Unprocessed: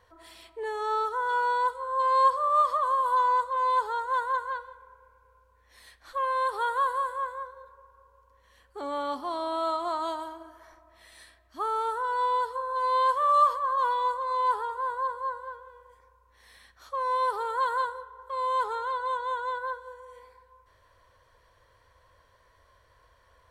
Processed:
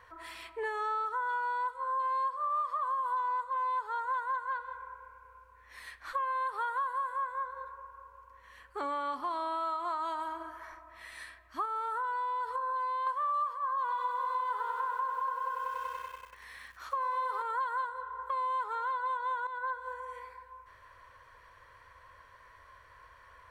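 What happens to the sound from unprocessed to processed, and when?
0:11.65–0:13.07: downward compressor 4 to 1, threshold −31 dBFS
0:13.79–0:17.42: feedback echo at a low word length 95 ms, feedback 80%, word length 9 bits, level −6 dB
0:19.47–0:19.96: fade in, from −13.5 dB
whole clip: flat-topped bell 1,600 Hz +8.5 dB; downward compressor 6 to 1, threshold −32 dBFS

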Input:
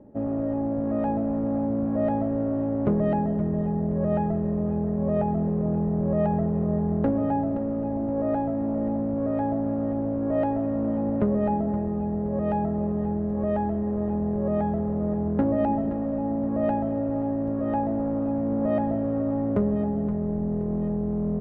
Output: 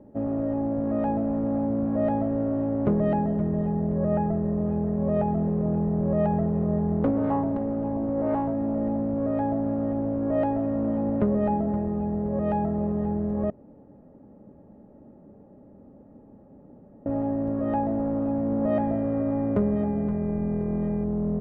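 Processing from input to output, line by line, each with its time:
0:03.95–0:04.61: low-pass filter 2,300 Hz
0:06.99–0:08.53: highs frequency-modulated by the lows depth 0.35 ms
0:13.50–0:17.06: fill with room tone
0:18.72–0:21.03: hum with harmonics 400 Hz, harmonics 6, −54 dBFS

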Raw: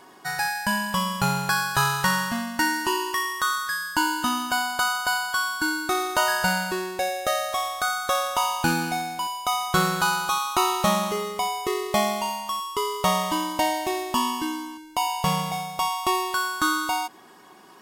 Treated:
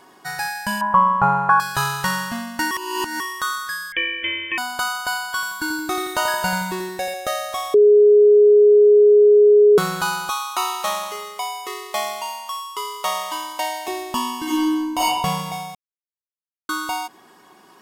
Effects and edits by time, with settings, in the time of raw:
0:00.81–0:01.60: drawn EQ curve 360 Hz 0 dB, 1,100 Hz +14 dB, 4,100 Hz −25 dB
0:02.71–0:03.20: reverse
0:03.92–0:04.58: voice inversion scrambler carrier 3,300 Hz
0:05.24–0:07.14: feedback echo at a low word length 87 ms, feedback 55%, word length 8 bits, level −7 dB
0:07.74–0:09.78: beep over 416 Hz −8 dBFS
0:10.30–0:13.88: high-pass filter 630 Hz
0:14.43–0:15.05: thrown reverb, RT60 1 s, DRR −8 dB
0:15.75–0:16.69: silence

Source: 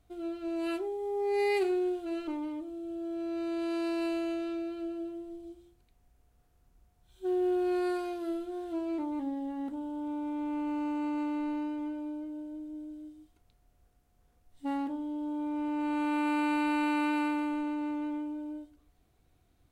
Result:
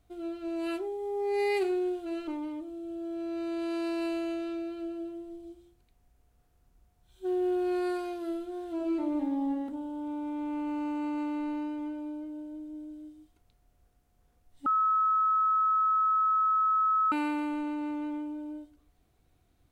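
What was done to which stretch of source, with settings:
0:08.75–0:09.48: thrown reverb, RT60 0.92 s, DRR 1.5 dB
0:14.66–0:17.12: beep over 1,290 Hz −22.5 dBFS

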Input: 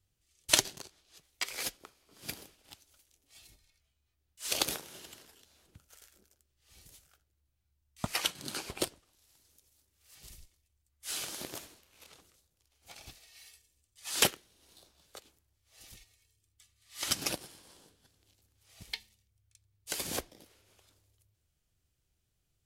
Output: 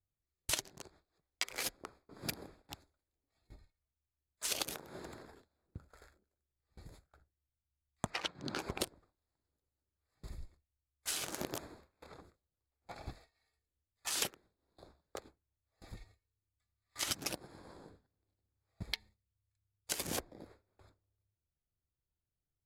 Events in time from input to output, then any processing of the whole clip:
0:08.10–0:08.59: high-frequency loss of the air 110 metres
whole clip: adaptive Wiener filter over 15 samples; noise gate with hold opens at −55 dBFS; downward compressor 6 to 1, threshold −44 dBFS; level +9 dB

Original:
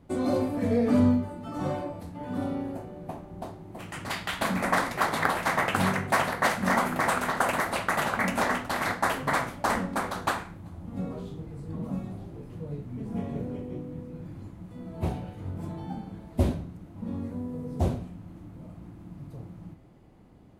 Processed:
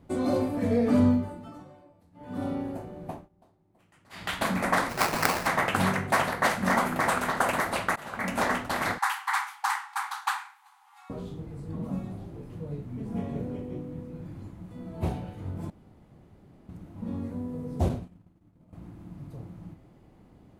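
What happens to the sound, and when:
0:01.28–0:02.48: duck −21 dB, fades 0.37 s
0:03.13–0:04.27: duck −23.5 dB, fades 0.16 s
0:04.89–0:05.47: sample-rate reduction 3,400 Hz, jitter 20%
0:07.96–0:08.44: fade in, from −24 dB
0:08.98–0:11.10: linear-phase brick-wall high-pass 750 Hz
0:15.70–0:16.69: fill with room tone
0:17.89–0:18.73: downward expander −34 dBFS

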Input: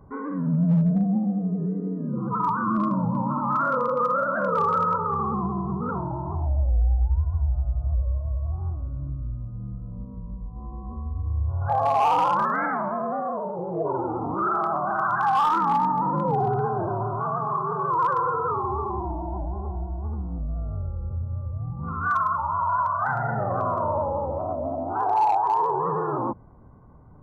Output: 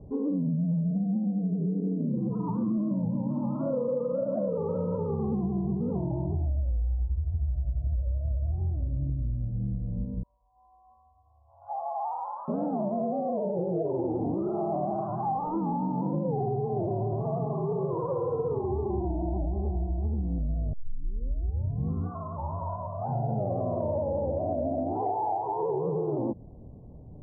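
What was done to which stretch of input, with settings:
0:06.26–0:07.99: Bessel low-pass filter 620 Hz
0:10.23–0:12.48: inverse Chebyshev high-pass filter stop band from 450 Hz
0:17.06–0:18.66: flutter between parallel walls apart 10.6 metres, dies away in 0.49 s
0:20.73: tape start 1.19 s
0:22.75–0:23.30: parametric band 1,300 Hz −5 dB
whole clip: Butterworth low-pass 700 Hz 36 dB per octave; dynamic equaliser 240 Hz, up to +3 dB, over −38 dBFS, Q 1; downward compressor 12 to 1, threshold −29 dBFS; level +4 dB

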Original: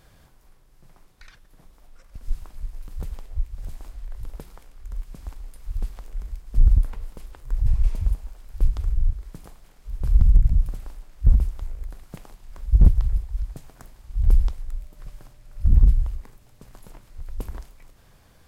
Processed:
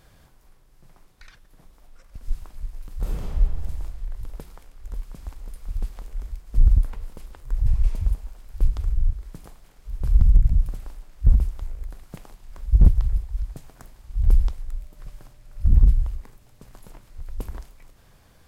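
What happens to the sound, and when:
0:02.98–0:03.41: thrown reverb, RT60 1.8 s, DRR −7 dB
0:04.29–0:05.24: delay throw 540 ms, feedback 75%, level −8.5 dB

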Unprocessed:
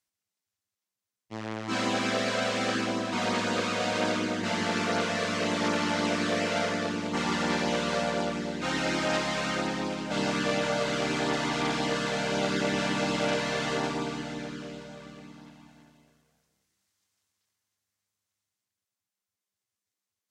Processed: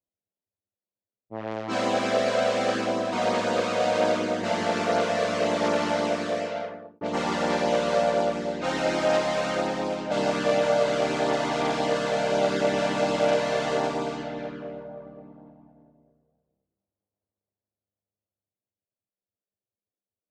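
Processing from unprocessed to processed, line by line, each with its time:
0:05.87–0:07.01: fade out
whole clip: low-pass that shuts in the quiet parts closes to 440 Hz, open at −27.5 dBFS; parametric band 610 Hz +10.5 dB 1.1 octaves; level −1.5 dB

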